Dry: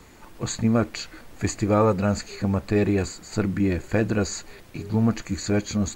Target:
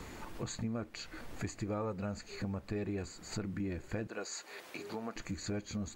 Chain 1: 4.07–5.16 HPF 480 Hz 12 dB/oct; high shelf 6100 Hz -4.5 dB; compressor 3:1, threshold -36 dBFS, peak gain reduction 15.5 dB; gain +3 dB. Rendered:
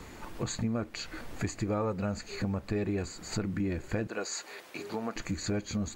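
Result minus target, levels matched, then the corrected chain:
compressor: peak gain reduction -6 dB
4.07–5.16 HPF 480 Hz 12 dB/oct; high shelf 6100 Hz -4.5 dB; compressor 3:1, threshold -45 dBFS, peak gain reduction 21.5 dB; gain +3 dB

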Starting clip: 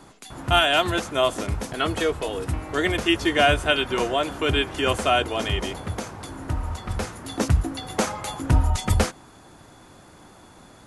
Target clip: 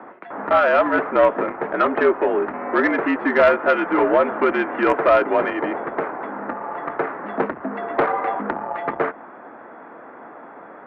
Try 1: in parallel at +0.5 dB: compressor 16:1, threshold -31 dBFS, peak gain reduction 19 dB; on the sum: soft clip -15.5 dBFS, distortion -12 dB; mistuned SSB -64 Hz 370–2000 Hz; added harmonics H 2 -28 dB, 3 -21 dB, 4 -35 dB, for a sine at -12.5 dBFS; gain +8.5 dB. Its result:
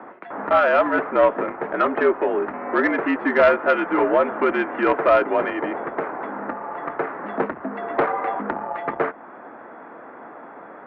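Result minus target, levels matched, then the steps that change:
compressor: peak gain reduction +7 dB
change: compressor 16:1, threshold -23.5 dBFS, peak gain reduction 12 dB

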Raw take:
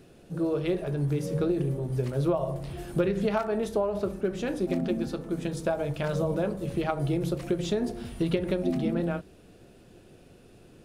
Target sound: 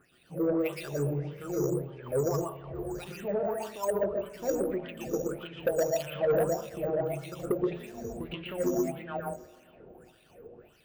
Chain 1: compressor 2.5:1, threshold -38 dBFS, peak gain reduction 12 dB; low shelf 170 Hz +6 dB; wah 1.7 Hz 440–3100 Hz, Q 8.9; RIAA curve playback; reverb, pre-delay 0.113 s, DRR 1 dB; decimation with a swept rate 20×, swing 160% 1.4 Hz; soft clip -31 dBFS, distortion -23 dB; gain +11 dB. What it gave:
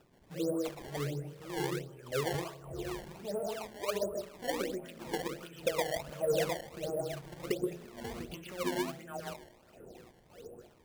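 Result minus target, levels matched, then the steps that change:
decimation with a swept rate: distortion +15 dB; compressor: peak gain reduction +7 dB
change: compressor 2.5:1, threshold -26.5 dBFS, peak gain reduction 5 dB; change: decimation with a swept rate 4×, swing 160% 1.4 Hz

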